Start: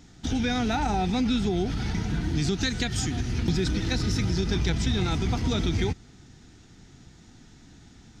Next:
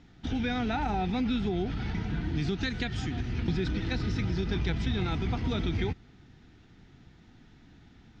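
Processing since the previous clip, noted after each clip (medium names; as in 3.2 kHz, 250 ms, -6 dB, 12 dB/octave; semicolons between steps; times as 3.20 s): Chebyshev low-pass 2.9 kHz, order 2; trim -3 dB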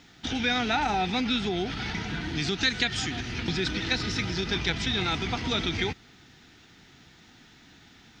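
tilt EQ +3 dB/octave; trim +6 dB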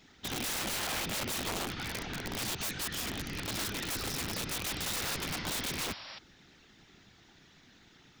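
whisper effect; integer overflow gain 24 dB; painted sound noise, 4.66–6.19 s, 510–5700 Hz -41 dBFS; trim -5.5 dB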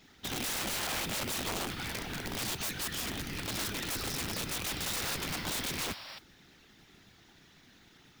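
modulation noise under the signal 15 dB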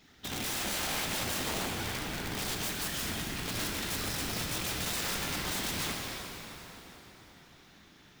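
plate-style reverb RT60 4.3 s, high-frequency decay 0.75×, DRR 0 dB; trim -1.5 dB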